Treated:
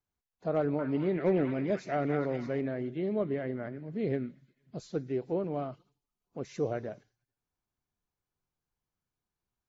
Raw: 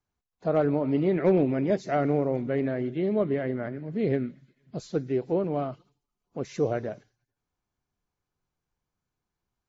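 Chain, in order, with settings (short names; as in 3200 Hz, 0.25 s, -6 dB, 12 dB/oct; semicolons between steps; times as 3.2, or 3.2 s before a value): 0.58–2.61 delay with a stepping band-pass 0.207 s, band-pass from 1600 Hz, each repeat 0.7 oct, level 0 dB; gain -5.5 dB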